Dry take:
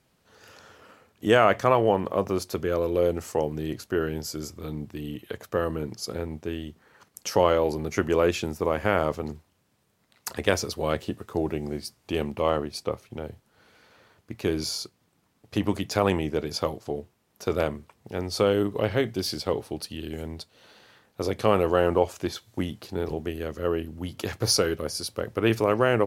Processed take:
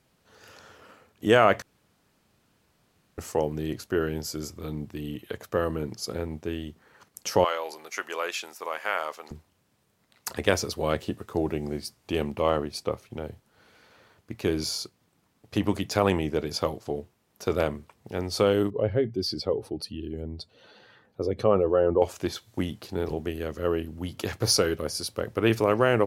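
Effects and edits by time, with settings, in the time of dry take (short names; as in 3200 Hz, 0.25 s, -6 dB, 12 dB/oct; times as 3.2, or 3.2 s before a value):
1.62–3.18 room tone
7.44–9.31 HPF 940 Hz
18.7–22.02 spectral contrast raised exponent 1.6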